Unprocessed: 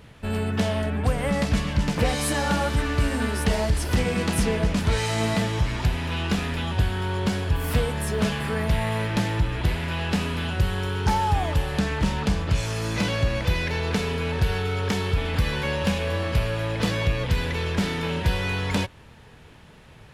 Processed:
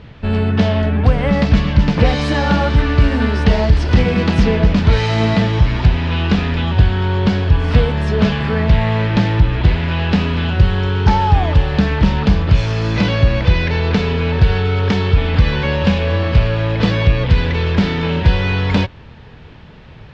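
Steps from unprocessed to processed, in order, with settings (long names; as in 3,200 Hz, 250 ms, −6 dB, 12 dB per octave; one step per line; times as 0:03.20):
low-pass filter 4,900 Hz 24 dB per octave
low-shelf EQ 290 Hz +5 dB
level +6.5 dB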